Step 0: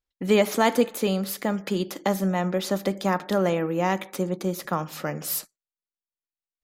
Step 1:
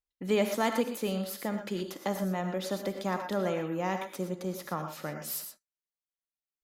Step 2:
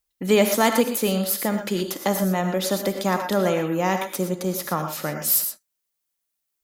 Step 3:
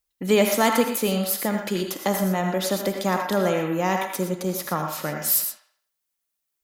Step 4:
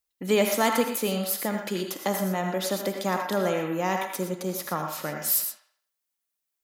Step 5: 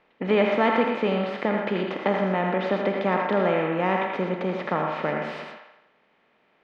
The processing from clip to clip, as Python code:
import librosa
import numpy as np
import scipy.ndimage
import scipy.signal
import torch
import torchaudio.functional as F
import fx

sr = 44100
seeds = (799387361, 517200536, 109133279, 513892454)

y1 = fx.rev_gated(x, sr, seeds[0], gate_ms=140, shape='rising', drr_db=6.0)
y1 = y1 * 10.0 ** (-8.0 / 20.0)
y2 = fx.high_shelf(y1, sr, hz=6500.0, db=9.5)
y2 = y2 * 10.0 ** (9.0 / 20.0)
y3 = fx.echo_wet_bandpass(y2, sr, ms=82, feedback_pct=37, hz=1500.0, wet_db=-6.5)
y3 = y3 * 10.0 ** (-1.0 / 20.0)
y4 = fx.low_shelf(y3, sr, hz=94.0, db=-9.0)
y4 = y4 * 10.0 ** (-3.0 / 20.0)
y5 = fx.bin_compress(y4, sr, power=0.6)
y5 = scipy.signal.sosfilt(scipy.signal.butter(4, 2800.0, 'lowpass', fs=sr, output='sos'), y5)